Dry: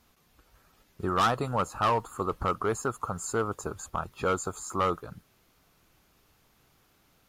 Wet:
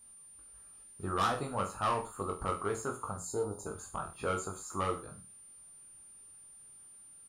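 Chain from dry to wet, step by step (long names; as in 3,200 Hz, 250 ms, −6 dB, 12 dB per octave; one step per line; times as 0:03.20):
gain on a spectral selection 0:03.16–0:03.66, 1,000–3,600 Hz −15 dB
steady tone 9,200 Hz −49 dBFS
reverse bouncing-ball delay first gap 20 ms, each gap 1.1×, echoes 5
level −8 dB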